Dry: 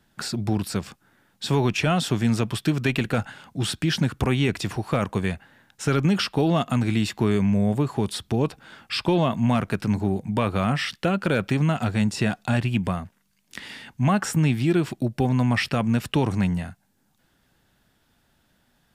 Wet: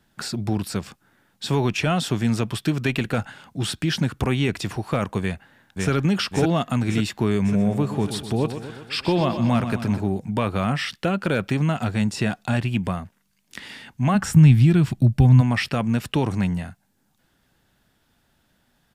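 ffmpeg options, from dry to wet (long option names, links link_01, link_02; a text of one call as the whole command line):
ffmpeg -i in.wav -filter_complex "[0:a]asplit=2[link_01][link_02];[link_02]afade=type=in:start_time=5.21:duration=0.01,afade=type=out:start_time=5.9:duration=0.01,aecho=0:1:550|1100|1650|2200|2750|3300|3850|4400:0.841395|0.462767|0.254522|0.139987|0.0769929|0.0423461|0.0232904|0.0128097[link_03];[link_01][link_03]amix=inputs=2:normalize=0,asettb=1/sr,asplit=3[link_04][link_05][link_06];[link_04]atrim=end=7.364[link_07];[link_05]atrim=start=7.36:end=10.01,asetpts=PTS-STARTPTS,afade=type=in:duration=0.004:curve=qsin,afade=type=out:start_time=2.646:duration=0.004:curve=qsin,aecho=1:1:124|248|372|496|620|744|868:0.316|0.187|0.11|0.0649|0.0383|0.0226|0.0133,atrim=end_sample=116865[link_08];[link_06]atrim=start=10.006[link_09];[link_07][link_08]acrossfade=duration=0.004:curve1=hsin:curve2=qsin[link_10];[link_10][link_09]acrossfade=duration=0.004:curve1=qsin:curve2=hsin,asplit=3[link_11][link_12][link_13];[link_11]afade=type=out:start_time=14.14:duration=0.02[link_14];[link_12]asubboost=boost=7:cutoff=140,afade=type=in:start_time=14.14:duration=0.02,afade=type=out:start_time=15.4:duration=0.02[link_15];[link_13]afade=type=in:start_time=15.4:duration=0.02[link_16];[link_14][link_15][link_16]amix=inputs=3:normalize=0" out.wav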